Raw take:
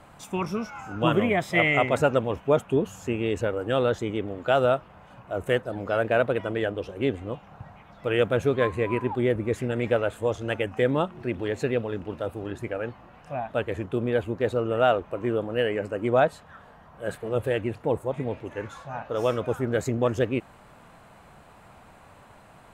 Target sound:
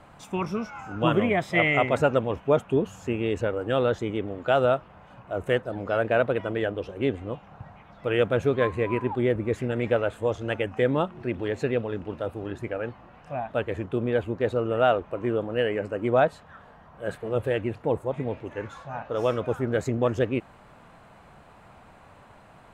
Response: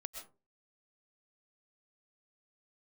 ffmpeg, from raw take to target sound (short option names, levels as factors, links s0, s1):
-af "highshelf=f=7500:g=-9.5"